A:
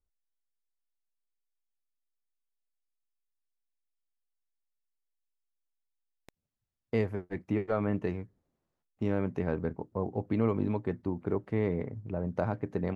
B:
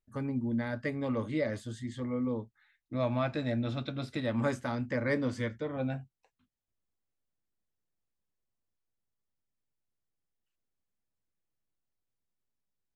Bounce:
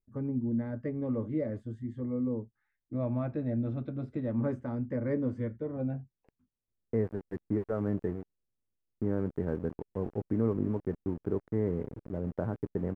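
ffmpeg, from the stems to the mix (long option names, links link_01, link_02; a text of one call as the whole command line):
ffmpeg -i stem1.wav -i stem2.wav -filter_complex "[0:a]highshelf=frequency=2500:width_type=q:width=3:gain=-12,aeval=exprs='val(0)*gte(abs(val(0)),0.0141)':channel_layout=same,volume=-0.5dB[link_01];[1:a]volume=1dB[link_02];[link_01][link_02]amix=inputs=2:normalize=0,firequalizer=gain_entry='entry(420,0);entry(710,-8);entry(3900,-27)':delay=0.05:min_phase=1" out.wav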